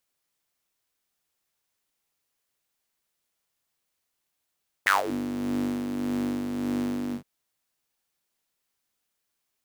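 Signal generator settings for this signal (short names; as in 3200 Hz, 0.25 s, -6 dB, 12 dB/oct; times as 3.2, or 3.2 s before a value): synth patch with tremolo G2, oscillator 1 triangle, oscillator 2 level -14.5 dB, sub -1 dB, noise -22.5 dB, filter highpass, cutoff 180 Hz, Q 8, filter envelope 3.5 oct, filter decay 0.25 s, filter sustain 15%, attack 11 ms, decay 0.15 s, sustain -18 dB, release 0.11 s, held 2.26 s, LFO 1.7 Hz, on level 4 dB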